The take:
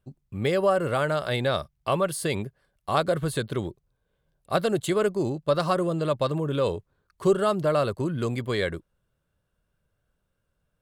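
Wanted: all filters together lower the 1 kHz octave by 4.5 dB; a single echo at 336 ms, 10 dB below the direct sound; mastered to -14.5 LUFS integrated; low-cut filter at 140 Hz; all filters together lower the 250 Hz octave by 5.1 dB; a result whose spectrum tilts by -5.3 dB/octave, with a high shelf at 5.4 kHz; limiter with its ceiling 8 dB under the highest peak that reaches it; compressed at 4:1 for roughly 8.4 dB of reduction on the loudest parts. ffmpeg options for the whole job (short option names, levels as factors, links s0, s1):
-af "highpass=140,equalizer=f=250:t=o:g=-7,equalizer=f=1000:t=o:g=-5.5,highshelf=f=5400:g=-5.5,acompressor=threshold=0.0316:ratio=4,alimiter=level_in=1.26:limit=0.0631:level=0:latency=1,volume=0.794,aecho=1:1:336:0.316,volume=13.3"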